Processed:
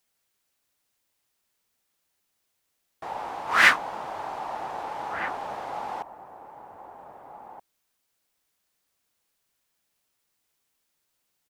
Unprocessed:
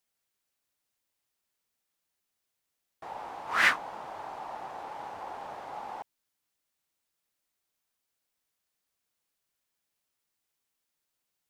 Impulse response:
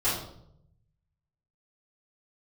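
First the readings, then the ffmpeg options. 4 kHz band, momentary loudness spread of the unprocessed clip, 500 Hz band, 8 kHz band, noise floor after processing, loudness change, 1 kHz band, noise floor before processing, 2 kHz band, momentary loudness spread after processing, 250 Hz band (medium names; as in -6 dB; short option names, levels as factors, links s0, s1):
+6.5 dB, 19 LU, +7.0 dB, +6.5 dB, -77 dBFS, +6.5 dB, +6.5 dB, -83 dBFS, +6.5 dB, 28 LU, +7.0 dB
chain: -filter_complex "[0:a]asplit=2[s0][s1];[s1]adelay=1574,volume=0.355,highshelf=f=4000:g=-35.4[s2];[s0][s2]amix=inputs=2:normalize=0,volume=2.11"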